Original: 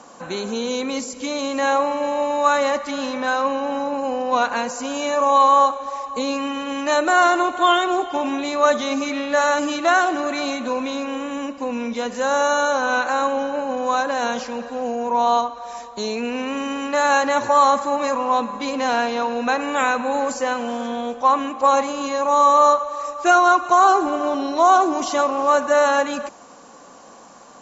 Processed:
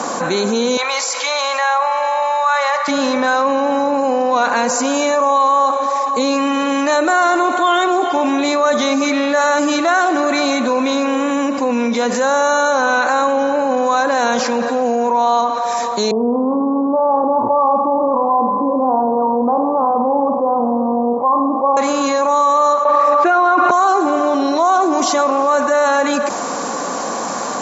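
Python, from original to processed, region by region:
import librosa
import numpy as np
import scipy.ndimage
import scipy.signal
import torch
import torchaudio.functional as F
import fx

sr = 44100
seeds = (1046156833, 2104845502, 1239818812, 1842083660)

y = fx.chain(x, sr, fx.highpass(hz=740.0, slope=24),
    fx.air_absorb(metres=100.0), at=(0.77, 2.88))
y = fx.chain(y, sr, fx.steep_lowpass(hz=1100.0, slope=72),
    fx.room_flutter(wall_m=8.6, rt60_s=0.41), at=(16.11, 21.77))
y = fx.chain(y, sr, fx.lowpass(hz=2700.0, slope=12),
    fx.env_flatten(amount_pct=100), at=(22.85, 23.71))
y = scipy.signal.sosfilt(scipy.signal.butter(2, 160.0, 'highpass', fs=sr, output='sos'), y)
y = fx.peak_eq(y, sr, hz=2900.0, db=-6.0, octaves=0.3)
y = fx.env_flatten(y, sr, amount_pct=70)
y = y * 10.0 ** (-1.0 / 20.0)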